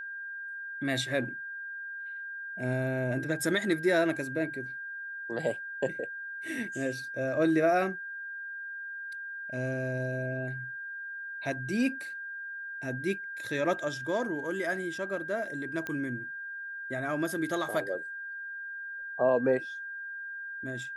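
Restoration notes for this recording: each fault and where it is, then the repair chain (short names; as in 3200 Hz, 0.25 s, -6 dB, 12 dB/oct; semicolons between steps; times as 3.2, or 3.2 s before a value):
tone 1600 Hz -37 dBFS
15.87 pop -21 dBFS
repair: de-click; notch 1600 Hz, Q 30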